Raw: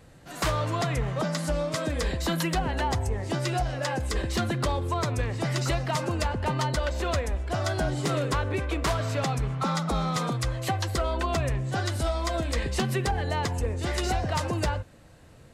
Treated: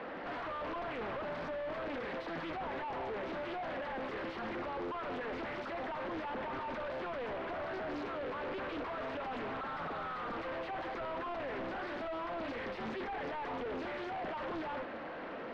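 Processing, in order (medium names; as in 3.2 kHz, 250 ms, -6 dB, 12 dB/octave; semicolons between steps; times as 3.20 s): elliptic band-pass 220–5800 Hz; compressor with a negative ratio -35 dBFS, ratio -1; overdrive pedal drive 29 dB, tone 2.5 kHz, clips at -22.5 dBFS; saturation -33.5 dBFS, distortion -13 dB; distance through air 490 m; loudspeaker Doppler distortion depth 0.55 ms; trim -2 dB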